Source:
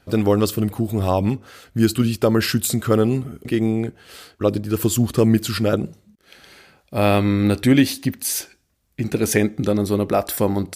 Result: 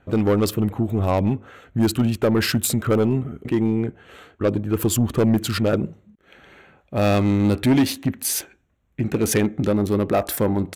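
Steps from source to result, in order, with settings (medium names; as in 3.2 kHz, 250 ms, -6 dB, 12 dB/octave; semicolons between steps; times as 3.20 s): local Wiener filter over 9 samples; saturation -13 dBFS, distortion -13 dB; trim +1.5 dB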